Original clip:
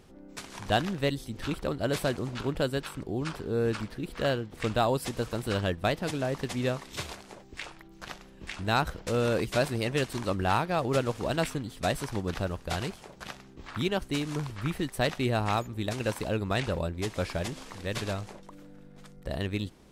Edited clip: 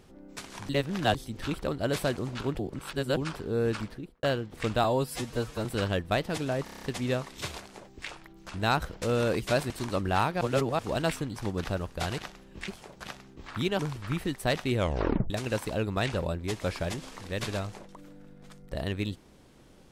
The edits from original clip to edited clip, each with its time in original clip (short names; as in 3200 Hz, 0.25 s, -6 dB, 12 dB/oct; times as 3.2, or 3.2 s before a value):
0.69–1.15 reverse
2.59–3.17 reverse
3.84–4.23 studio fade out
4.84–5.38 stretch 1.5×
6.37 stutter 0.03 s, 7 plays
8.04–8.54 move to 12.88
9.75–10.04 cut
10.75–11.13 reverse
11.7–12.06 cut
13.99–14.33 cut
15.28 tape stop 0.56 s